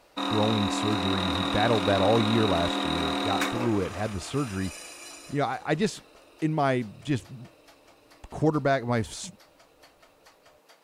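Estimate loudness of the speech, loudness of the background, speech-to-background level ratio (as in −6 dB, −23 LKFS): −28.5 LKFS, −29.0 LKFS, 0.5 dB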